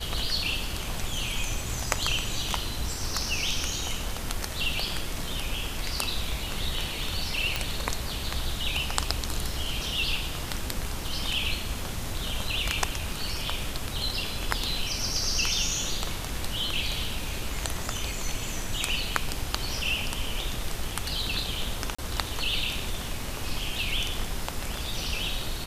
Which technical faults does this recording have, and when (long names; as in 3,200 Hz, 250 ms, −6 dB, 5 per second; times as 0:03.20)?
0:07.56: click −10 dBFS
0:21.95–0:21.98: drop-out 35 ms